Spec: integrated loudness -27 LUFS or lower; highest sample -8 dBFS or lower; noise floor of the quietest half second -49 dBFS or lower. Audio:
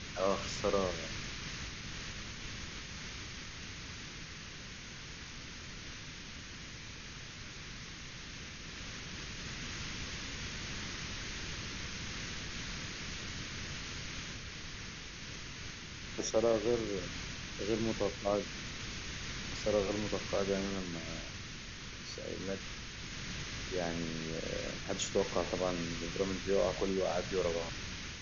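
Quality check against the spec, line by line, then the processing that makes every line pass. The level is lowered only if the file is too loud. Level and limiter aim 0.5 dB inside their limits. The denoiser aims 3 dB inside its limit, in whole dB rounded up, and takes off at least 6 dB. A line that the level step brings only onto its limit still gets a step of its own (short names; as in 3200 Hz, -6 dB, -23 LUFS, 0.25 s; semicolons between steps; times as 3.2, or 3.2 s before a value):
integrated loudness -38.5 LUFS: OK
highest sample -18.5 dBFS: OK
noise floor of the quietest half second -47 dBFS: fail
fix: denoiser 6 dB, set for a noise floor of -47 dBFS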